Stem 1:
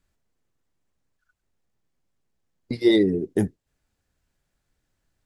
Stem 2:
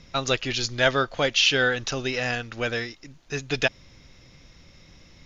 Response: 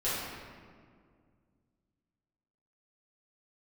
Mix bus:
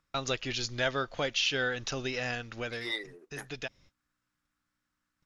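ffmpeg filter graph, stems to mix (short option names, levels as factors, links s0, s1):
-filter_complex "[0:a]aeval=exprs='val(0)+0.00501*(sin(2*PI*60*n/s)+sin(2*PI*2*60*n/s)/2+sin(2*PI*3*60*n/s)/3+sin(2*PI*4*60*n/s)/4+sin(2*PI*5*60*n/s)/5)':c=same,highpass=f=1200:t=q:w=3.6,volume=0.422[s0];[1:a]agate=range=0.0282:threshold=0.00631:ratio=16:detection=peak,acompressor=threshold=0.00891:ratio=1.5,volume=0.944,afade=t=out:st=2.3:d=0.75:silence=0.446684[s1];[s0][s1]amix=inputs=2:normalize=0"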